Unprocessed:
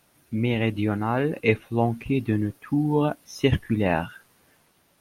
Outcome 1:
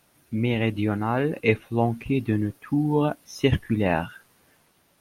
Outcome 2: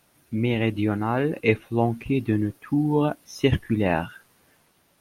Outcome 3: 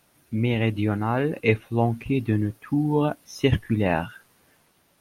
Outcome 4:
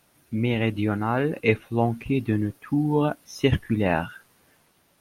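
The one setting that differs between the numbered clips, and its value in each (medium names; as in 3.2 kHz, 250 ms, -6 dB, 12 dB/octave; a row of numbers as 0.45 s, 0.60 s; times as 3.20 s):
dynamic bell, frequency: 7.3 kHz, 340 Hz, 110 Hz, 1.4 kHz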